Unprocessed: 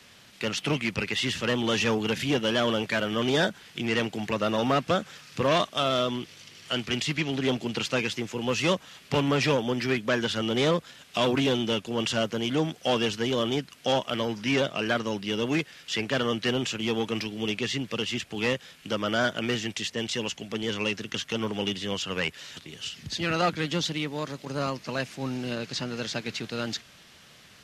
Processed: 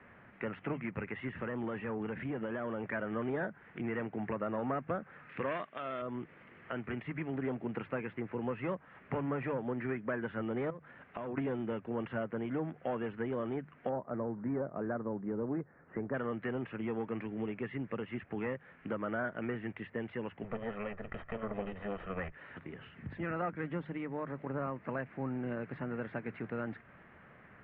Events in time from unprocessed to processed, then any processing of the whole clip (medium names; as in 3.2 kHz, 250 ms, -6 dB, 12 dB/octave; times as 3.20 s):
1.28–2.93 s: compression, threshold -27 dBFS
5.29–6.02 s: frequency weighting D
10.70–11.38 s: compression 12:1, threshold -33 dBFS
13.89–16.14 s: Gaussian low-pass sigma 6.4 samples
20.44–22.32 s: comb filter that takes the minimum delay 1.6 ms
whole clip: compression 3:1, threshold -35 dBFS; steep low-pass 2 kHz 36 dB/octave; hum notches 50/100/150 Hz